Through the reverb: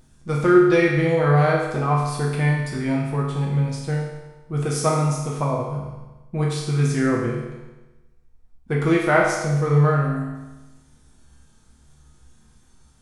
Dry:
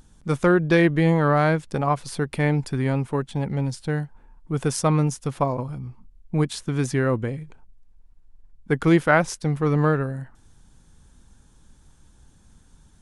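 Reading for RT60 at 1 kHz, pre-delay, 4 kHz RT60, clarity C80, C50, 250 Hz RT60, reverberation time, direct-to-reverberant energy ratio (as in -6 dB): 1.1 s, 6 ms, 1.1 s, 4.0 dB, 2.0 dB, 1.1 s, 1.1 s, -4.5 dB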